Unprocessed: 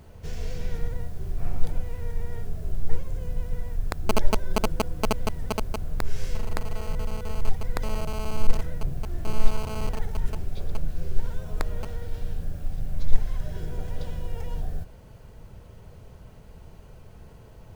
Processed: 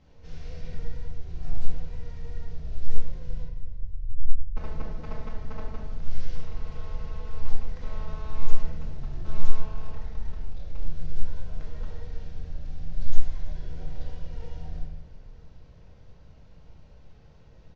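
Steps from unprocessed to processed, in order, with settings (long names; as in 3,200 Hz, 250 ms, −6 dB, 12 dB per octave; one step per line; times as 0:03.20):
variable-slope delta modulation 32 kbit/s
0:03.45–0:04.57: inverse Chebyshev low-pass filter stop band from 650 Hz, stop band 80 dB
0:09.60–0:10.78: amplitude modulation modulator 38 Hz, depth 55%
on a send: repeating echo 322 ms, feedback 50%, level −17 dB
on the sum: rectangular room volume 630 cubic metres, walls mixed, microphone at 2.1 metres
level −12.5 dB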